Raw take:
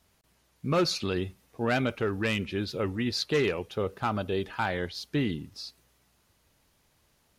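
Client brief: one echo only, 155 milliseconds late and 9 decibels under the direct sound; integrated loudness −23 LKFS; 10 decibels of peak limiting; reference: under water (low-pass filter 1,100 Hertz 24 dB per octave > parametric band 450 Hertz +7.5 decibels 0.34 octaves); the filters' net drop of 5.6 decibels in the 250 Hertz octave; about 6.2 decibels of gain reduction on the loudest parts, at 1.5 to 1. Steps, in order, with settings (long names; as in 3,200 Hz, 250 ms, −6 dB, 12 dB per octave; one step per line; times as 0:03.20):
parametric band 250 Hz −9 dB
downward compressor 1.5 to 1, threshold −41 dBFS
brickwall limiter −32 dBFS
low-pass filter 1,100 Hz 24 dB per octave
parametric band 450 Hz +7.5 dB 0.34 octaves
single-tap delay 155 ms −9 dB
level +18 dB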